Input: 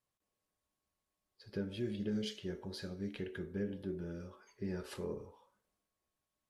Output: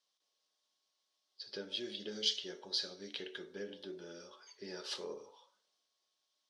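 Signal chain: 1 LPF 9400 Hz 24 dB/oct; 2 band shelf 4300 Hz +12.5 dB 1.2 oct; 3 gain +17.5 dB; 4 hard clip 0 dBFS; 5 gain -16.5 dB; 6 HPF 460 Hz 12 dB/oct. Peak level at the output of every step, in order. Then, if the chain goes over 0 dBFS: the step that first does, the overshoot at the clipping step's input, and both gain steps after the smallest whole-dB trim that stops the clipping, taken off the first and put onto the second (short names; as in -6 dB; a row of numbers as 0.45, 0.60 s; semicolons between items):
-27.5, -19.0, -1.5, -1.5, -18.0, -17.0 dBFS; no overload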